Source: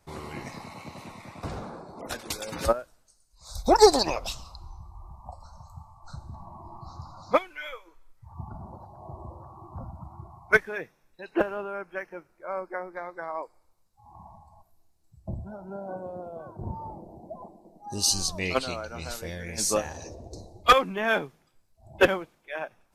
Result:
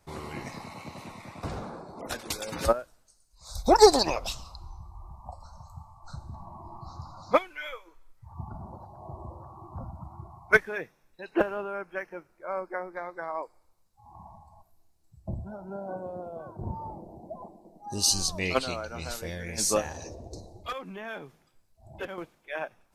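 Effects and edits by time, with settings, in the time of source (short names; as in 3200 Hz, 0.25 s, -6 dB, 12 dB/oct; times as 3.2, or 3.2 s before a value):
20.39–22.18 compressor 2.5:1, threshold -41 dBFS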